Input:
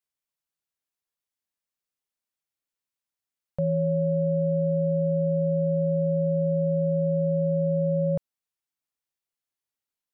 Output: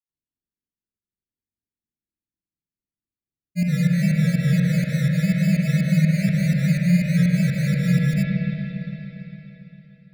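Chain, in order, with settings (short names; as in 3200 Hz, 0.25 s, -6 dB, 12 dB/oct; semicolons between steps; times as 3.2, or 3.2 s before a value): inverse Chebyshev low-pass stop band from 700 Hz, stop band 40 dB; sample-and-hold 21×; grains, grains 20/s, pitch spread up and down by 3 st; pump 124 bpm, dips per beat 2, -23 dB, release 0.158 s; spring tank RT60 3.8 s, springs 45/57 ms, chirp 50 ms, DRR -2 dB; gain +8 dB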